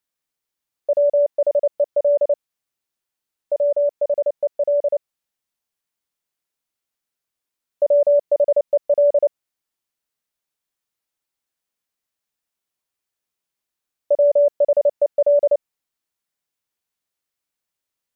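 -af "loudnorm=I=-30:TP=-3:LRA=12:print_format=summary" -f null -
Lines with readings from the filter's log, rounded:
Input Integrated:    -19.1 LUFS
Input True Peak:     -10.3 dBTP
Input LRA:             5.7 LU
Input Threshold:     -29.1 LUFS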